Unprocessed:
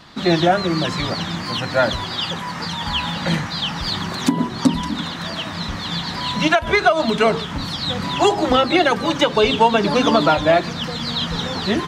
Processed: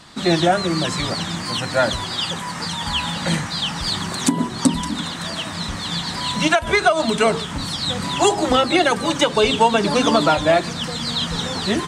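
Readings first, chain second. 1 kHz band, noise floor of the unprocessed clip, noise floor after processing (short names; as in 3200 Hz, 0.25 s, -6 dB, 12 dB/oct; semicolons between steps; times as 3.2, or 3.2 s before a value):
-1.0 dB, -29 dBFS, -29 dBFS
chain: bell 8600 Hz +14.5 dB 0.69 oct; gain -1 dB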